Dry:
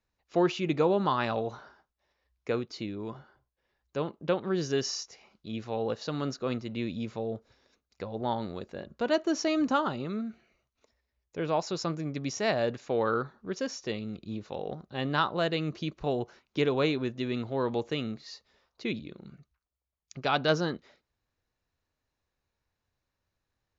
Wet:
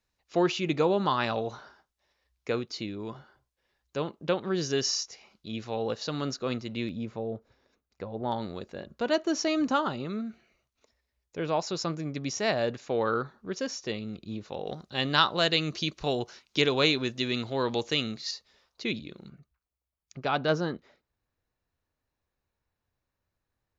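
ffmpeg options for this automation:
ffmpeg -i in.wav -af "asetnsamples=nb_out_samples=441:pad=0,asendcmd='6.89 equalizer g -6.5;8.32 equalizer g 3;14.67 equalizer g 14;18.31 equalizer g 7;19.29 equalizer g -4.5',equalizer=frequency=5600:width_type=o:width=2.5:gain=5.5" out.wav

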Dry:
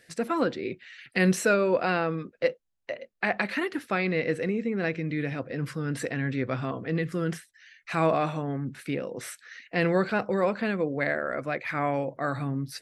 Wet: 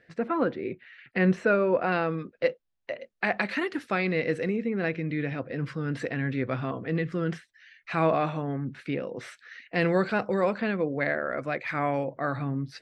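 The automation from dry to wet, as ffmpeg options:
ffmpeg -i in.wav -af "asetnsamples=nb_out_samples=441:pad=0,asendcmd='1.92 lowpass f 4700;3 lowpass f 7900;4.56 lowpass f 4100;9.75 lowpass f 8600;10.58 lowpass f 4500;11.38 lowpass f 7500;12.04 lowpass f 3700',lowpass=2100" out.wav

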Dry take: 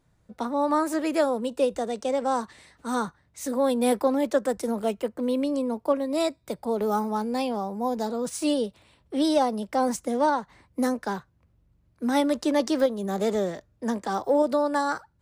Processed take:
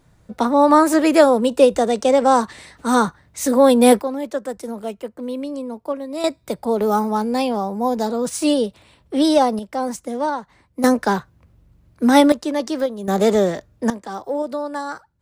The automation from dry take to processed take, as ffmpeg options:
ffmpeg -i in.wav -af "asetnsamples=nb_out_samples=441:pad=0,asendcmd='4.01 volume volume -1.5dB;6.24 volume volume 7dB;9.59 volume volume 0.5dB;10.84 volume volume 11dB;12.32 volume volume 1dB;13.08 volume volume 9.5dB;13.9 volume volume -2dB',volume=11dB" out.wav

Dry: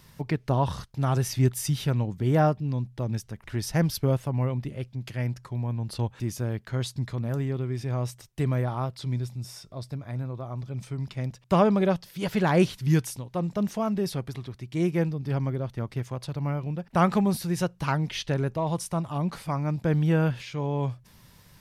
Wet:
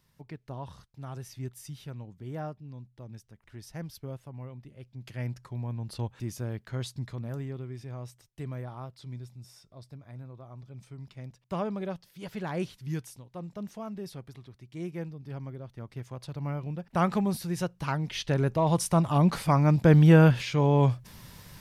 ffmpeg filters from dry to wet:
ffmpeg -i in.wav -af "volume=12.5dB,afade=type=in:start_time=4.75:duration=0.48:silence=0.298538,afade=type=out:start_time=6.86:duration=1.12:silence=0.473151,afade=type=in:start_time=15.71:duration=0.86:silence=0.421697,afade=type=in:start_time=18.03:duration=1.1:silence=0.316228" out.wav

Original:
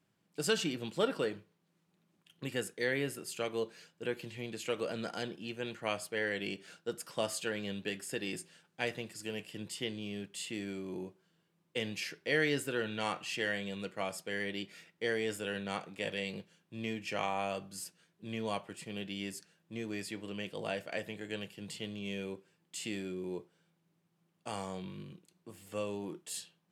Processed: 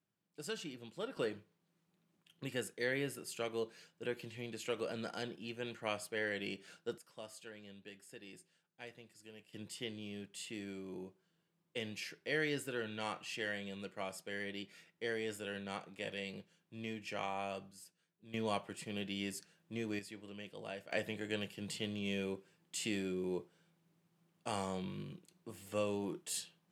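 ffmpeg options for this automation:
ffmpeg -i in.wav -af "asetnsamples=nb_out_samples=441:pad=0,asendcmd='1.17 volume volume -3.5dB;6.98 volume volume -15.5dB;9.53 volume volume -5.5dB;17.71 volume volume -13dB;18.34 volume volume -0.5dB;19.99 volume volume -8.5dB;20.91 volume volume 1dB',volume=-11.5dB" out.wav

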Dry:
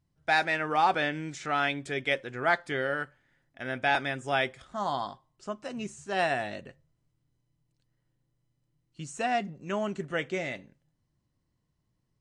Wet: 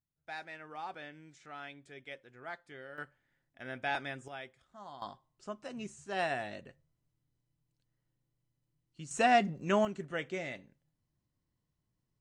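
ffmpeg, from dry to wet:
ffmpeg -i in.wav -af "asetnsamples=nb_out_samples=441:pad=0,asendcmd='2.98 volume volume -8.5dB;4.28 volume volume -18dB;5.02 volume volume -6dB;9.11 volume volume 3dB;9.85 volume volume -6dB',volume=-18.5dB" out.wav

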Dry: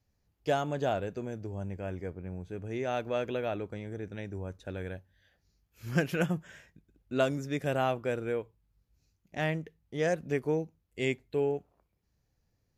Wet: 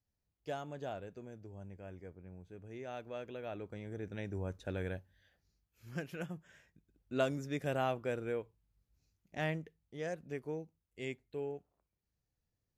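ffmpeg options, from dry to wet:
ffmpeg -i in.wav -af "volume=7.5dB,afade=type=in:start_time=3.37:duration=1.08:silence=0.266073,afade=type=out:start_time=4.96:duration=0.89:silence=0.237137,afade=type=in:start_time=6.35:duration=0.82:silence=0.398107,afade=type=out:start_time=9.51:duration=0.48:silence=0.501187" out.wav

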